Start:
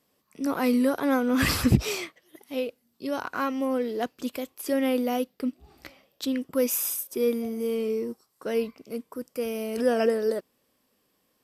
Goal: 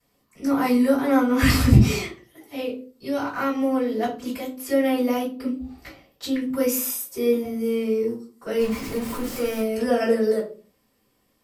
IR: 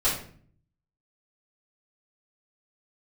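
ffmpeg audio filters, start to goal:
-filter_complex "[0:a]asettb=1/sr,asplit=3[a][b][c];[a]atrim=end=8.594[d];[b]atrim=start=8.59:end=9.61,asetpts=PTS-STARTPTS,afade=t=in:d=0.004:c=qsin,afade=t=out:st=1.016:d=0.004:c=qsin,aeval=exprs='val(0)+0.5*0.0266*sgn(val(0))':c=same[e];[c]atrim=start=9.606[f];[d][e]acrossfade=d=0.004:c1=hsin:c2=qsin[g];[g][f]acrossfade=d=0.004:c1=qsin:c2=hsin[h];[1:a]atrim=start_sample=2205,asetrate=74970,aresample=44100[i];[h][i]afir=irnorm=-1:irlink=0,volume=-4dB"

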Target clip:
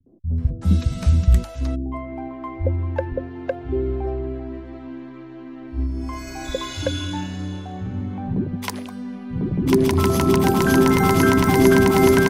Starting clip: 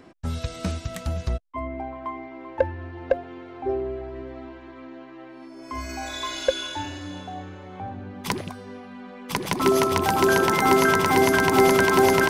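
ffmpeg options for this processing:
-filter_complex "[0:a]highshelf=f=9.7k:g=4.5,bandreject=f=50:t=h:w=6,bandreject=f=100:t=h:w=6,acrossover=split=280[a][b];[a]dynaudnorm=f=230:g=3:m=15dB[c];[c][b]amix=inputs=2:normalize=0,acrossover=split=150|500[d][e][f];[e]adelay=60[g];[f]adelay=380[h];[d][g][h]amix=inputs=3:normalize=0,volume=-1dB"

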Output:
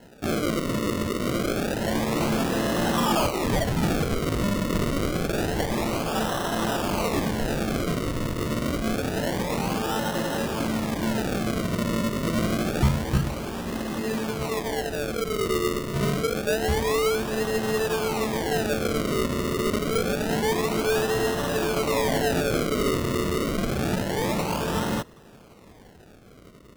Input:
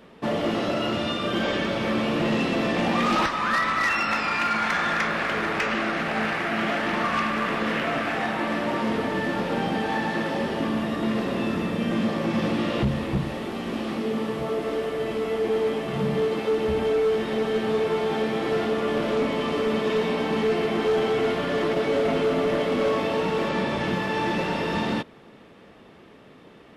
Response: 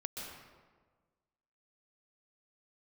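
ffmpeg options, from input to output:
-af "asubboost=boost=2.5:cutoff=130,acrusher=samples=37:mix=1:aa=0.000001:lfo=1:lforange=37:lforate=0.27"

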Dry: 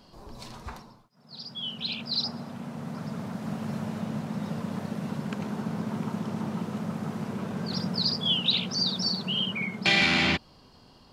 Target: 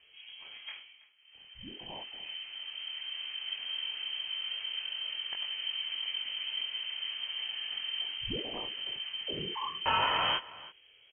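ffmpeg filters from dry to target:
-af "flanger=delay=20:depth=5.9:speed=1.1,aecho=1:1:326:0.112,lowpass=f=2.8k:t=q:w=0.5098,lowpass=f=2.8k:t=q:w=0.6013,lowpass=f=2.8k:t=q:w=0.9,lowpass=f=2.8k:t=q:w=2.563,afreqshift=-3300,volume=-2dB"

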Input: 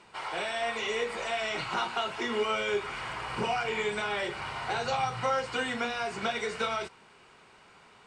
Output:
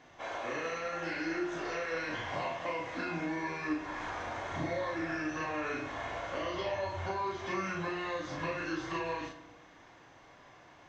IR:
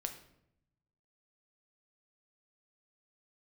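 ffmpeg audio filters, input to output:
-filter_complex "[0:a]acompressor=threshold=-35dB:ratio=2,asplit=2[a][b];[1:a]atrim=start_sample=2205,adelay=27[c];[b][c]afir=irnorm=-1:irlink=0,volume=0.5dB[d];[a][d]amix=inputs=2:normalize=0,asetrate=32667,aresample=44100,volume=-3dB"

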